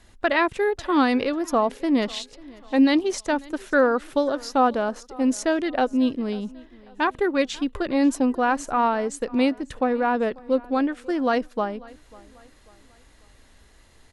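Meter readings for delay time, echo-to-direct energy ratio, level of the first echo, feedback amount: 543 ms, −22.0 dB, −23.0 dB, 42%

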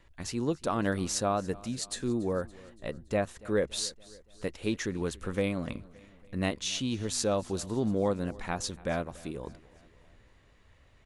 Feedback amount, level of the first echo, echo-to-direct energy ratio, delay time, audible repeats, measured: 56%, −22.0 dB, −20.5 dB, 284 ms, 3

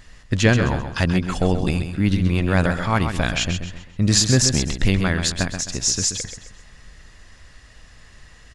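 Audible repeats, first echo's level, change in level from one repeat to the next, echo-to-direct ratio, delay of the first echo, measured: 4, −8.0 dB, −9.0 dB, −7.5 dB, 131 ms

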